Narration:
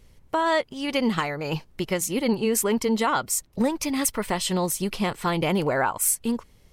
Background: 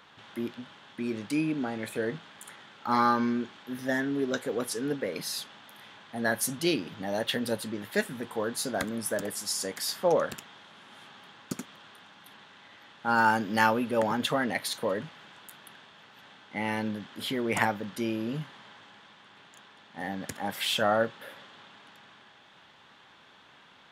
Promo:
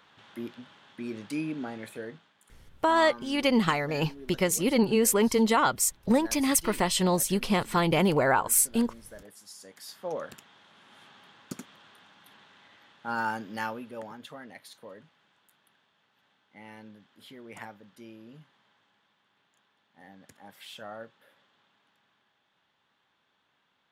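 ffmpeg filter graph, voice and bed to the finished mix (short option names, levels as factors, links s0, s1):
-filter_complex "[0:a]adelay=2500,volume=1[s0];[1:a]volume=2.66,afade=t=out:st=1.7:d=0.64:silence=0.237137,afade=t=in:st=9.63:d=1.39:silence=0.237137,afade=t=out:st=12.61:d=1.59:silence=0.223872[s1];[s0][s1]amix=inputs=2:normalize=0"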